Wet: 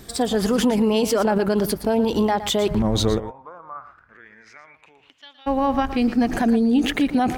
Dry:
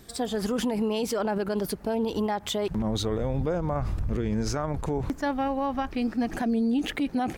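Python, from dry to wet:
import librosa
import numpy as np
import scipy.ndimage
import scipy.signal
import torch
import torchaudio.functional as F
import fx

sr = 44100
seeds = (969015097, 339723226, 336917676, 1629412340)

y = fx.bandpass_q(x, sr, hz=fx.line((3.18, 870.0), (5.46, 3700.0)), q=8.9, at=(3.18, 5.46), fade=0.02)
y = y + 10.0 ** (-12.5 / 20.0) * np.pad(y, (int(116 * sr / 1000.0), 0))[:len(y)]
y = F.gain(torch.from_numpy(y), 7.5).numpy()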